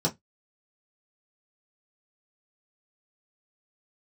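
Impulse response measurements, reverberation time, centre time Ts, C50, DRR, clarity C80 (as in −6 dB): 0.15 s, 11 ms, 22.0 dB, −4.0 dB, 34.5 dB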